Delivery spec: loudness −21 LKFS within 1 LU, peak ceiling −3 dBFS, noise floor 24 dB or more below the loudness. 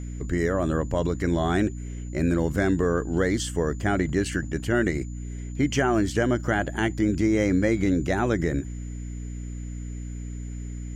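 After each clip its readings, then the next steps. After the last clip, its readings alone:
mains hum 60 Hz; hum harmonics up to 300 Hz; level of the hum −32 dBFS; interfering tone 7,000 Hz; level of the tone −51 dBFS; integrated loudness −25.0 LKFS; sample peak −9.5 dBFS; target loudness −21.0 LKFS
→ hum removal 60 Hz, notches 5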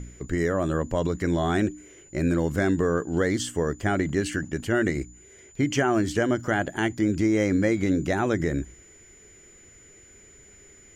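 mains hum none found; interfering tone 7,000 Hz; level of the tone −51 dBFS
→ notch filter 7,000 Hz, Q 30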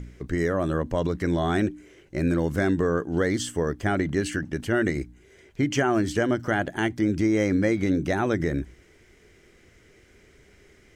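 interfering tone none found; integrated loudness −25.5 LKFS; sample peak −9.5 dBFS; target loudness −21.0 LKFS
→ level +4.5 dB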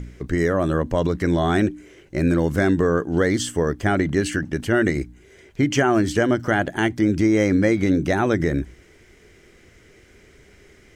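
integrated loudness −21.0 LKFS; sample peak −5.0 dBFS; background noise floor −52 dBFS

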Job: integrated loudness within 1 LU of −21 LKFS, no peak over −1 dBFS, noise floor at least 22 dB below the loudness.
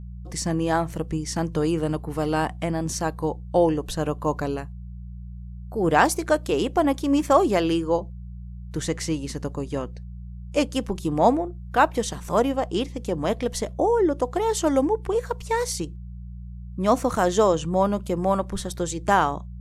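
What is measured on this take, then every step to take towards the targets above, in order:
mains hum 60 Hz; hum harmonics up to 180 Hz; level of the hum −35 dBFS; integrated loudness −24.0 LKFS; sample peak −5.0 dBFS; target loudness −21.0 LKFS
→ hum removal 60 Hz, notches 3
level +3 dB

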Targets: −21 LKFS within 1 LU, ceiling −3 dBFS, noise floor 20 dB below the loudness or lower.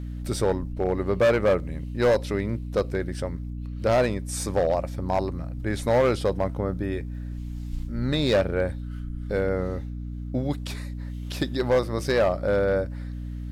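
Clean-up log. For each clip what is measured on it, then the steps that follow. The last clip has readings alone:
share of clipped samples 1.6%; peaks flattened at −15.5 dBFS; mains hum 60 Hz; hum harmonics up to 300 Hz; level of the hum −31 dBFS; integrated loudness −26.5 LKFS; sample peak −15.5 dBFS; target loudness −21.0 LKFS
→ clipped peaks rebuilt −15.5 dBFS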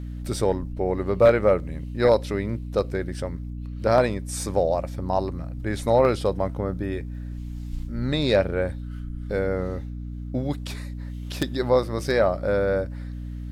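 share of clipped samples 0.0%; mains hum 60 Hz; hum harmonics up to 300 Hz; level of the hum −31 dBFS
→ hum removal 60 Hz, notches 5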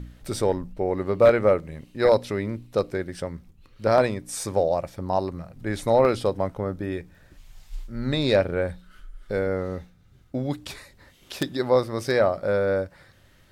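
mains hum none found; integrated loudness −24.5 LKFS; sample peak −5.5 dBFS; target loudness −21.0 LKFS
→ level +3.5 dB
brickwall limiter −3 dBFS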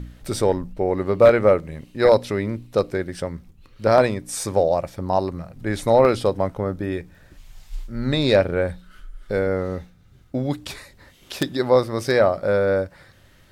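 integrated loudness −21.5 LKFS; sample peak −3.0 dBFS; background noise floor −53 dBFS

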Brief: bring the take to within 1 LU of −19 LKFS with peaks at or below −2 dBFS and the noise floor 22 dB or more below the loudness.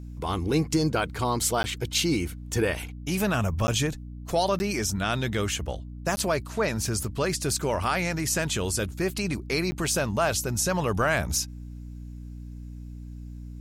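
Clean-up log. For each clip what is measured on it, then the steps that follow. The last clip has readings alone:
number of dropouts 5; longest dropout 10 ms; mains hum 60 Hz; hum harmonics up to 300 Hz; level of the hum −37 dBFS; integrated loudness −27.0 LKFS; sample peak −11.5 dBFS; target loudness −19.0 LKFS
→ repair the gap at 0:01.63/0:03.67/0:04.59/0:06.16/0:09.71, 10 ms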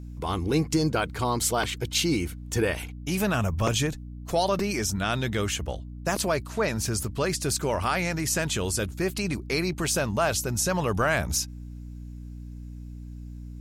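number of dropouts 0; mains hum 60 Hz; hum harmonics up to 300 Hz; level of the hum −37 dBFS
→ hum removal 60 Hz, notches 5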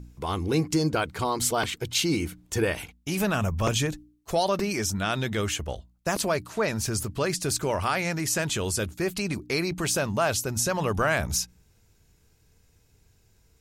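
mains hum none found; integrated loudness −27.0 LKFS; sample peak −10.5 dBFS; target loudness −19.0 LKFS
→ level +8 dB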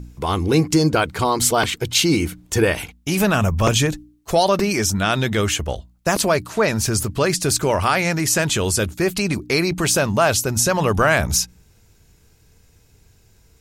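integrated loudness −19.0 LKFS; sample peak −2.5 dBFS; background noise floor −55 dBFS

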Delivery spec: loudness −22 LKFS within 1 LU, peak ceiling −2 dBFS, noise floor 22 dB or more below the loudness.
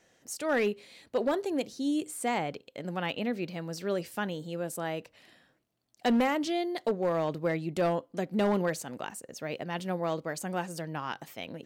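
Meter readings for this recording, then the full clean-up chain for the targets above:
share of clipped samples 0.7%; peaks flattened at −21.0 dBFS; integrated loudness −32.0 LKFS; sample peak −21.0 dBFS; target loudness −22.0 LKFS
→ clipped peaks rebuilt −21 dBFS
level +10 dB

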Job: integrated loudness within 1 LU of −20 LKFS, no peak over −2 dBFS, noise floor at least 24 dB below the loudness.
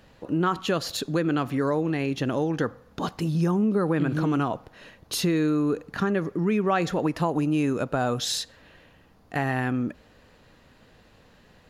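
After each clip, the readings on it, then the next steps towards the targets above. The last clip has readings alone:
integrated loudness −26.0 LKFS; sample peak −11.5 dBFS; target loudness −20.0 LKFS
→ level +6 dB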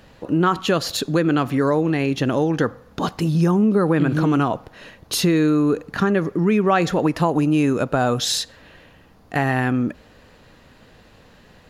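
integrated loudness −20.0 LKFS; sample peak −5.5 dBFS; background noise floor −51 dBFS

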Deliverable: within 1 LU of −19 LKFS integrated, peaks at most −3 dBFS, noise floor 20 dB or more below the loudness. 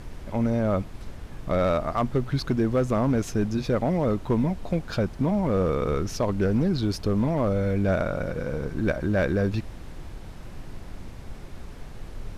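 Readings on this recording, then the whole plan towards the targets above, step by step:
share of clipped samples 0.7%; peaks flattened at −16.0 dBFS; background noise floor −41 dBFS; target noise floor −46 dBFS; integrated loudness −25.5 LKFS; sample peak −16.0 dBFS; target loudness −19.0 LKFS
→ clipped peaks rebuilt −16 dBFS
noise reduction from a noise print 6 dB
level +6.5 dB

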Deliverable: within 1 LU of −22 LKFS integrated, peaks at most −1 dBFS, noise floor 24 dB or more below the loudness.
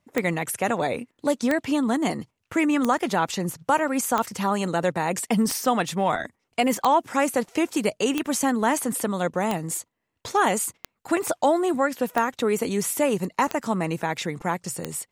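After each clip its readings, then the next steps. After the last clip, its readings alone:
number of clicks 12; integrated loudness −24.5 LKFS; sample peak −5.0 dBFS; target loudness −22.0 LKFS
→ click removal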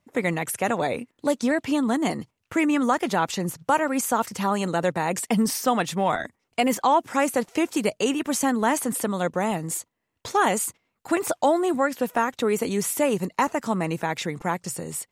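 number of clicks 0; integrated loudness −24.5 LKFS; sample peak −9.0 dBFS; target loudness −22.0 LKFS
→ level +2.5 dB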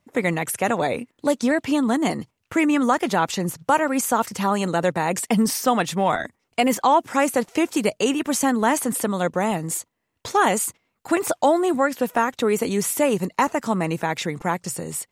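integrated loudness −22.0 LKFS; sample peak −6.5 dBFS; background noise floor −74 dBFS

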